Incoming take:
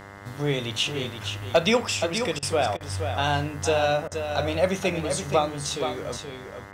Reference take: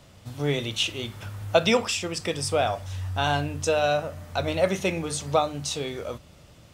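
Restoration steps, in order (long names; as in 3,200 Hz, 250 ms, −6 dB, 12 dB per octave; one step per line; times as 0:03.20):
clipped peaks rebuilt −10 dBFS
hum removal 100 Hz, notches 21
repair the gap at 0:02.39/0:02.77/0:04.08, 35 ms
echo removal 474 ms −7.5 dB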